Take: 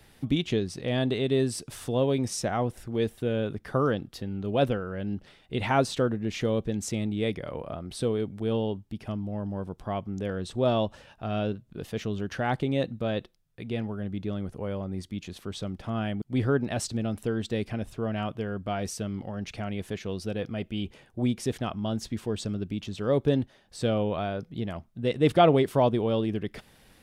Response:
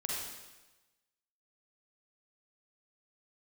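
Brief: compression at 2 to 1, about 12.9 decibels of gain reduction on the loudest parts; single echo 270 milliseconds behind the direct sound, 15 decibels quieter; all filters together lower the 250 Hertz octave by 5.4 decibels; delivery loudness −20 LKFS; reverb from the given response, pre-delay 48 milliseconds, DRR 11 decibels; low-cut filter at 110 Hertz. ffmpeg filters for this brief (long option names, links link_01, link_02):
-filter_complex "[0:a]highpass=110,equalizer=frequency=250:width_type=o:gain=-6.5,acompressor=threshold=-39dB:ratio=2,aecho=1:1:270:0.178,asplit=2[link_01][link_02];[1:a]atrim=start_sample=2205,adelay=48[link_03];[link_02][link_03]afir=irnorm=-1:irlink=0,volume=-14dB[link_04];[link_01][link_04]amix=inputs=2:normalize=0,volume=19dB"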